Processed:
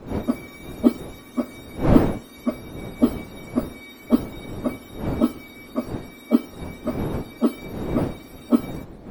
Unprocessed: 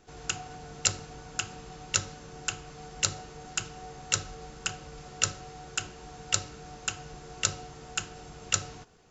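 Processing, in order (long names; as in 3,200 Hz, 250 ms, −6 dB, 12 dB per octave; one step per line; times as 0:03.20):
frequency axis turned over on the octave scale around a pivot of 1,300 Hz
wind on the microphone 350 Hz −33 dBFS
level +3.5 dB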